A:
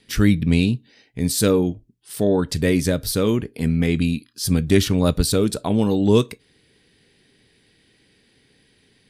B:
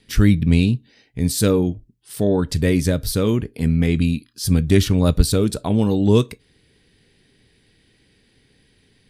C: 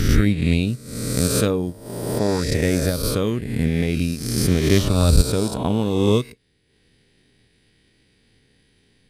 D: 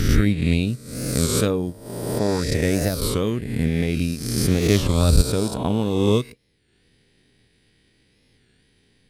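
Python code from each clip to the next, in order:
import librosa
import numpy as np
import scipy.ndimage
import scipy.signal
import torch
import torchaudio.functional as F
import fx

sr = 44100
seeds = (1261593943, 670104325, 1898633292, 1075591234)

y1 = fx.low_shelf(x, sr, hz=100.0, db=10.5)
y1 = F.gain(torch.from_numpy(y1), -1.0).numpy()
y2 = fx.spec_swells(y1, sr, rise_s=1.66)
y2 = fx.transient(y2, sr, attack_db=5, sustain_db=-6)
y2 = F.gain(torch.from_numpy(y2), -5.0).numpy()
y3 = fx.record_warp(y2, sr, rpm=33.33, depth_cents=160.0)
y3 = F.gain(torch.from_numpy(y3), -1.0).numpy()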